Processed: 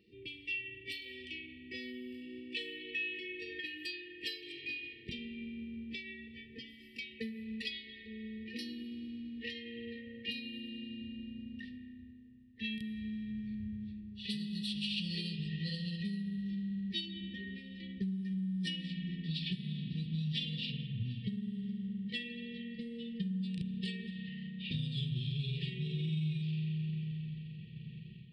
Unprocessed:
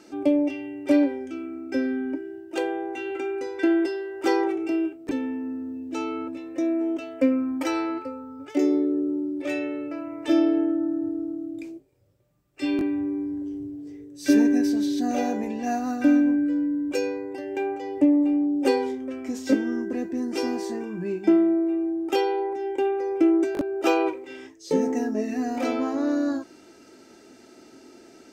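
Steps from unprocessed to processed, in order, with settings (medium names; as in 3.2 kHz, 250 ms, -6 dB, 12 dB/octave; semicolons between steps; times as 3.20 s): pitch bend over the whole clip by -11 st starting unshifted; high-pass 49 Hz; spring tank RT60 2.9 s, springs 32 ms, chirp 50 ms, DRR 7 dB; level rider gain up to 7 dB; level-controlled noise filter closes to 870 Hz, open at -12.5 dBFS; FFT filter 220 Hz 0 dB, 490 Hz -15 dB, 850 Hz +12 dB; compression 6:1, threshold -28 dBFS, peak gain reduction 18.5 dB; brick-wall FIR band-stop 500–1800 Hz; static phaser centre 1.4 kHz, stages 8; trim -1 dB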